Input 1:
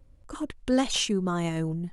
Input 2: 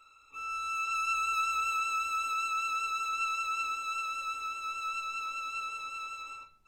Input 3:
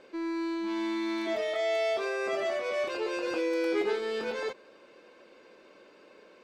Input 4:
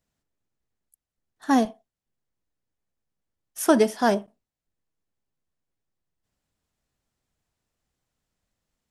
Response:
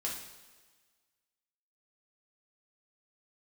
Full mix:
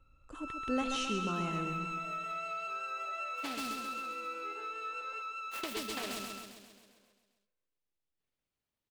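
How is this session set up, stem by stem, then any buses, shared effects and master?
-10.0 dB, 0.00 s, no bus, no send, echo send -7 dB, treble shelf 9 kHz -11.5 dB; band-stop 4.9 kHz, Q 14
-14.0 dB, 0.00 s, bus A, no send, no echo send, level rider gain up to 11 dB
-17.0 dB, 0.70 s, bus A, no send, echo send -13.5 dB, high-pass 420 Hz 12 dB/octave
-4.5 dB, 1.95 s, bus A, no send, echo send -11 dB, compression 2:1, threshold -29 dBFS, peak gain reduction 9.5 dB; delay time shaken by noise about 3.4 kHz, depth 0.32 ms
bus A: 0.0 dB, tone controls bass -13 dB, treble -11 dB; compression, threshold -36 dBFS, peak gain reduction 8.5 dB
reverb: none
echo: feedback delay 133 ms, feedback 60%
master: none

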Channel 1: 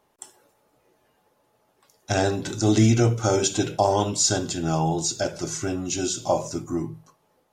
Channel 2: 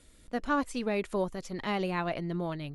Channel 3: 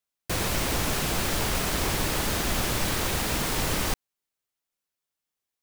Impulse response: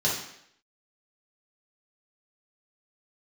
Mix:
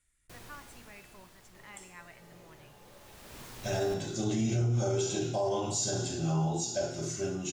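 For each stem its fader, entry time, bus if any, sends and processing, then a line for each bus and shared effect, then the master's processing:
-2.5 dB, 1.55 s, send -8 dB, upward compressor, threshold -36 dBFS
-8.0 dB, 0.00 s, no send, graphic EQ 250/500/2000/4000/8000 Hz -10/-12/+7/-7/+8 dB
-11.0 dB, 0.00 s, no send, auto duck -15 dB, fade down 1.70 s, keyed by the second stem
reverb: on, RT60 0.70 s, pre-delay 3 ms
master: feedback comb 120 Hz, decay 1.2 s, harmonics all, mix 70%; peak limiter -22 dBFS, peak gain reduction 9.5 dB

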